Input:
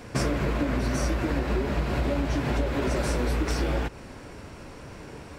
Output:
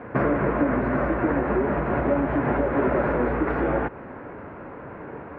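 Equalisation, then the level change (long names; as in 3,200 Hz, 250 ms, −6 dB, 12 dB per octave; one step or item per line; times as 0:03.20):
high-pass filter 290 Hz 6 dB per octave
low-pass filter 1,800 Hz 24 dB per octave
high-frequency loss of the air 140 metres
+8.5 dB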